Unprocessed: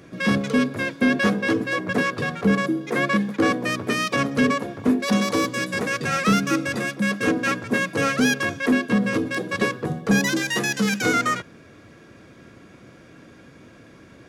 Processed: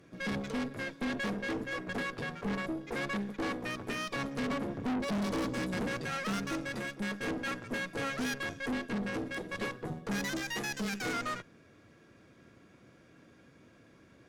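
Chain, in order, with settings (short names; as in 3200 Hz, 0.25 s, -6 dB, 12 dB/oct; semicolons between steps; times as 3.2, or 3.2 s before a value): 4.5–6.01 bell 200 Hz +11 dB 2.6 oct; tube stage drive 23 dB, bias 0.75; gain -7.5 dB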